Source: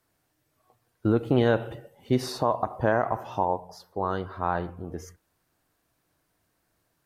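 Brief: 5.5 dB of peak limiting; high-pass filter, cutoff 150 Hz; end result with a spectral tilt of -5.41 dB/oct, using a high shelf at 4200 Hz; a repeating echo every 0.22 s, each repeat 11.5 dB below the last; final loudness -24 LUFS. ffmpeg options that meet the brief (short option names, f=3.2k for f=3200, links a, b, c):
-af "highpass=150,highshelf=f=4.2k:g=-5,alimiter=limit=-15.5dB:level=0:latency=1,aecho=1:1:220|440|660:0.266|0.0718|0.0194,volume=6.5dB"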